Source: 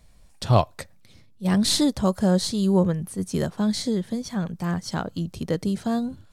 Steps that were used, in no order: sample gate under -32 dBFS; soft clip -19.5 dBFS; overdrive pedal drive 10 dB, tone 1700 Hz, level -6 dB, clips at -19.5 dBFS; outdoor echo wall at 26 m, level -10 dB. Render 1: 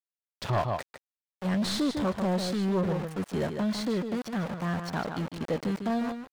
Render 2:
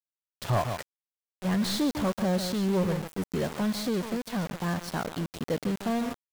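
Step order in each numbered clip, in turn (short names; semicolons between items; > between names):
sample gate > outdoor echo > soft clip > overdrive pedal; overdrive pedal > outdoor echo > sample gate > soft clip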